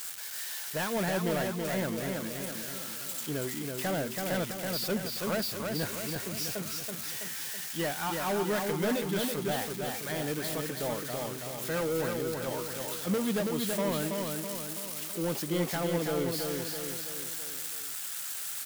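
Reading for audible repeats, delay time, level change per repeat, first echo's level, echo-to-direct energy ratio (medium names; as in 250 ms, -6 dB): 5, 328 ms, -5.5 dB, -4.0 dB, -2.5 dB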